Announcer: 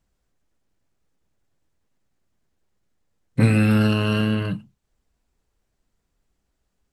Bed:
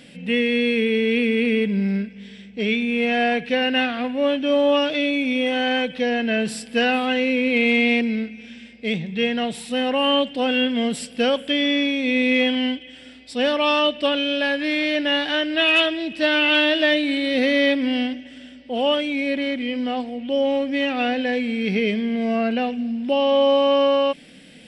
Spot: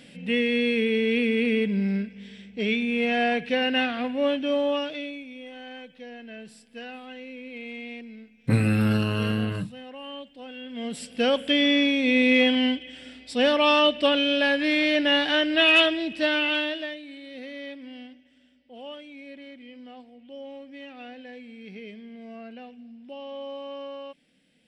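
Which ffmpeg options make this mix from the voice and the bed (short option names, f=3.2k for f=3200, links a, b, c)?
-filter_complex "[0:a]adelay=5100,volume=-4.5dB[a];[1:a]volume=16dB,afade=t=out:st=4.27:d=1:silence=0.149624,afade=t=in:st=10.64:d=0.84:silence=0.105925,afade=t=out:st=15.83:d=1.13:silence=0.105925[b];[a][b]amix=inputs=2:normalize=0"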